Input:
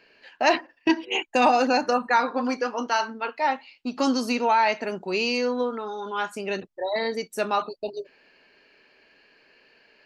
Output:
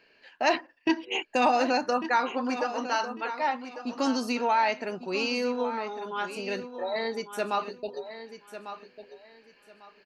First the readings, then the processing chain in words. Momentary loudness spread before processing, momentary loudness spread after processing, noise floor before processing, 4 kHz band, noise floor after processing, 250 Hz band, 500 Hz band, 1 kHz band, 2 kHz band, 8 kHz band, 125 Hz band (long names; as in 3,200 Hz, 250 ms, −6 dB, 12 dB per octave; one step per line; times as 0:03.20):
10 LU, 14 LU, −61 dBFS, −3.5 dB, −62 dBFS, −3.5 dB, −3.5 dB, −3.5 dB, −3.5 dB, −3.5 dB, can't be measured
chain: repeating echo 1,148 ms, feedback 24%, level −11.5 dB
level −4 dB